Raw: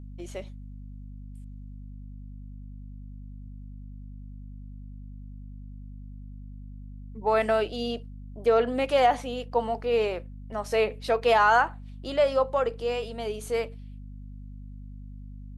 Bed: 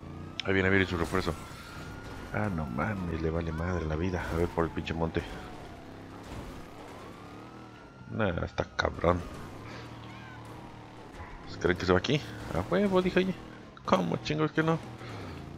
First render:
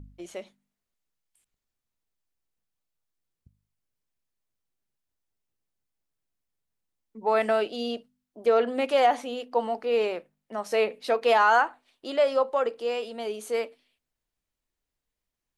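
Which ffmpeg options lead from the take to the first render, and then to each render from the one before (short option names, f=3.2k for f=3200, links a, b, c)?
-af "bandreject=f=50:t=h:w=4,bandreject=f=100:t=h:w=4,bandreject=f=150:t=h:w=4,bandreject=f=200:t=h:w=4,bandreject=f=250:t=h:w=4"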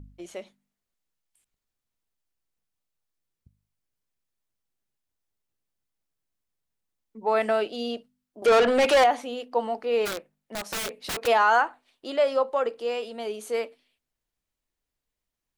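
-filter_complex "[0:a]asettb=1/sr,asplit=3[a][b][c];[a]atrim=end=8.424[d];[b]atrim=start=8.42:end=9.04,asetpts=PTS-STARTPTS,afade=t=in:d=0.004:c=qsin,afade=t=out:st=0.616:d=0.004:c=qsin,asplit=2[e][f];[f]highpass=f=720:p=1,volume=24dB,asoftclip=type=tanh:threshold=-12dB[g];[e][g]amix=inputs=2:normalize=0,lowpass=f=5.7k:p=1,volume=-6dB[h];[c]atrim=start=9.036[i];[d][h]acrossfade=d=0.004:c1=hsin:c2=qsin[j];[j][i]acrossfade=d=0.004:c1=qsin:c2=hsin,asplit=3[k][l][m];[k]afade=t=out:st=10.05:d=0.02[n];[l]aeval=exprs='(mod(18.8*val(0)+1,2)-1)/18.8':c=same,afade=t=in:st=10.05:d=0.02,afade=t=out:st=11.26:d=0.02[o];[m]afade=t=in:st=11.26:d=0.02[p];[n][o][p]amix=inputs=3:normalize=0"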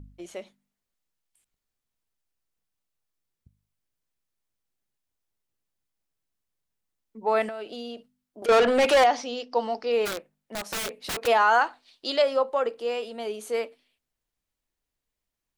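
-filter_complex "[0:a]asettb=1/sr,asplit=3[a][b][c];[a]atrim=end=7.484[d];[b]atrim=start=7.48:end=8.49,asetpts=PTS-STARTPTS,afade=t=in:d=0.004:c=qsin,afade=t=out:st=1.006:d=0.004:c=qsin,acompressor=threshold=-33dB:ratio=5:attack=3.2:release=140:knee=1:detection=peak[e];[c]atrim=start=8.486[f];[d][e]acrossfade=d=0.004:c1=hsin:c2=qsin[g];[g][f]acrossfade=d=0.004:c1=qsin:c2=hsin,asettb=1/sr,asplit=3[h][i][j];[h]atrim=end=9.064[k];[i]atrim=start=9.06:end=9.92,asetpts=PTS-STARTPTS,afade=t=in:d=0.004:c=qsin,afade=t=out:st=0.856:d=0.004:c=qsin,lowpass=f=5.3k:t=q:w=6.8[l];[j]atrim=start=9.916[m];[k][l]acrossfade=d=0.004:c1=hsin:c2=qsin[n];[n][m]acrossfade=d=0.004:c1=qsin:c2=hsin,asettb=1/sr,asplit=3[o][p][q];[o]atrim=end=11.614[r];[p]atrim=start=11.61:end=12.22,asetpts=PTS-STARTPTS,afade=t=in:d=0.004:c=qsin,afade=t=out:st=0.606:d=0.004:c=qsin,equalizer=f=4.5k:w=1.2:g=14.5[s];[q]atrim=start=12.216[t];[r][s]acrossfade=d=0.004:c1=hsin:c2=qsin[u];[u][t]acrossfade=d=0.004:c1=qsin:c2=hsin"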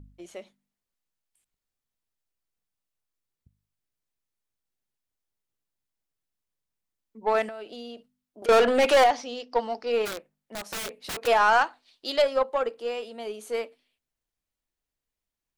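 -af "aeval=exprs='0.316*(cos(1*acos(clip(val(0)/0.316,-1,1)))-cos(1*PI/2))+0.0316*(cos(2*acos(clip(val(0)/0.316,-1,1)))-cos(2*PI/2))+0.0141*(cos(7*acos(clip(val(0)/0.316,-1,1)))-cos(7*PI/2))':c=same"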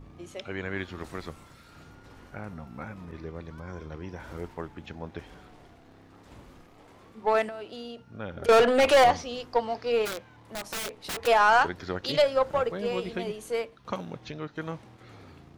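-filter_complex "[1:a]volume=-8.5dB[a];[0:a][a]amix=inputs=2:normalize=0"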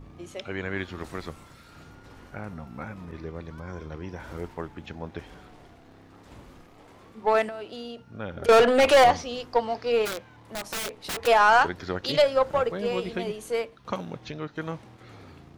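-af "volume=2dB"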